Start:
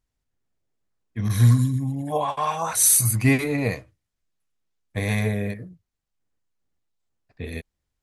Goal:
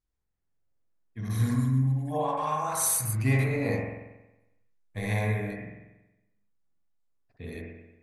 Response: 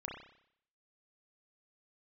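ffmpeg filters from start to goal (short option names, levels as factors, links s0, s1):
-filter_complex "[0:a]asettb=1/sr,asplit=3[s0][s1][s2];[s0]atrim=end=3.494[s3];[s1]atrim=start=3.49:end=5.57,asetpts=PTS-STARTPTS,afade=t=in:d=0.004:c=qsin,afade=t=out:st=2.076:d=0.004:c=qsin,asplit=2[s4][s5];[s5]adelay=19,volume=0.596[s6];[s4][s6]amix=inputs=2:normalize=0,atrim=end_sample=91728[s7];[s2]atrim=start=5.566[s8];[s3][s7]acrossfade=d=0.004:c1=hsin:c2=qsin[s9];[s9][s8]acrossfade=d=0.004:c1=qsin:c2=hsin[s10];[1:a]atrim=start_sample=2205,asetrate=29106,aresample=44100[s11];[s10][s11]afir=irnorm=-1:irlink=0,volume=0.447"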